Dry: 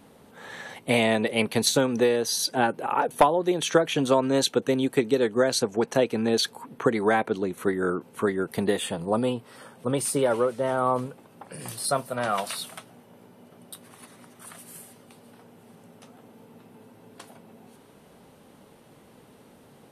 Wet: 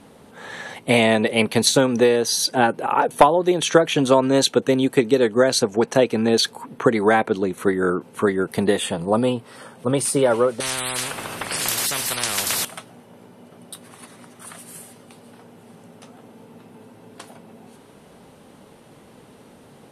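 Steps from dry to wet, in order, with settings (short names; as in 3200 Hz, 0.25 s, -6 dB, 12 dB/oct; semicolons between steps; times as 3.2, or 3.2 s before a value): LPF 12000 Hz 24 dB/oct; 10.6–12.65 spectral compressor 10:1; gain +5.5 dB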